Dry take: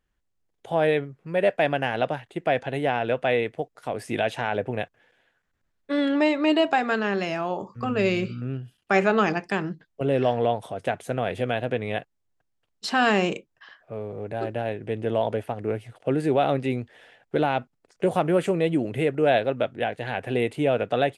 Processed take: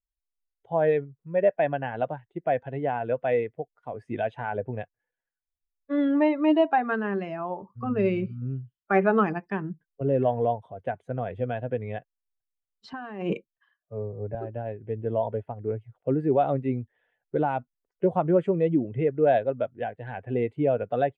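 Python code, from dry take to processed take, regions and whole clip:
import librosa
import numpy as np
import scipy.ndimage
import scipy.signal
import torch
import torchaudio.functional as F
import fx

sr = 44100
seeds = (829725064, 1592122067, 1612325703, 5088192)

y = fx.chain(x, sr, fx.over_compress(threshold_db=-27.0, ratio=-1.0),
    fx.band_widen(depth_pct=70), at=(12.93, 14.35))
y = fx.bin_expand(y, sr, power=1.5)
y = scipy.signal.sosfilt(scipy.signal.butter(2, 1500.0, 'lowpass', fs=sr, output='sos'), y)
y = F.gain(torch.from_numpy(y), 2.0).numpy()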